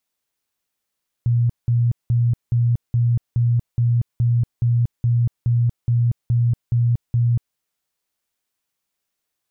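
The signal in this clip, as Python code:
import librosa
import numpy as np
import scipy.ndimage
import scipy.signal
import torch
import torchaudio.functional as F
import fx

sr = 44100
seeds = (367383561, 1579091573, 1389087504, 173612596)

y = fx.tone_burst(sr, hz=119.0, cycles=28, every_s=0.42, bursts=15, level_db=-14.0)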